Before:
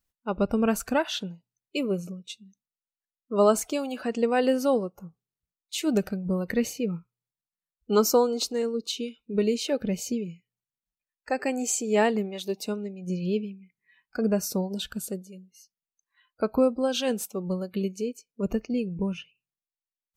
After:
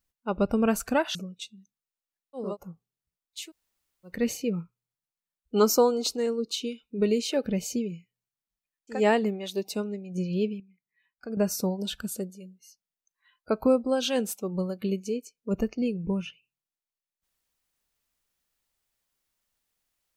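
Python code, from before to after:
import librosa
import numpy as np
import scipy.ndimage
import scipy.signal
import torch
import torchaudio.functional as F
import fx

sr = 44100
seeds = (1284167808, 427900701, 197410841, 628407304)

y = fx.edit(x, sr, fx.cut(start_s=1.15, length_s=0.88),
    fx.cut(start_s=3.33, length_s=1.48, crossfade_s=0.24),
    fx.room_tone_fill(start_s=5.76, length_s=0.75, crossfade_s=0.24),
    fx.cut(start_s=11.31, length_s=0.56, crossfade_s=0.16),
    fx.clip_gain(start_s=13.52, length_s=0.77, db=-9.5), tone=tone)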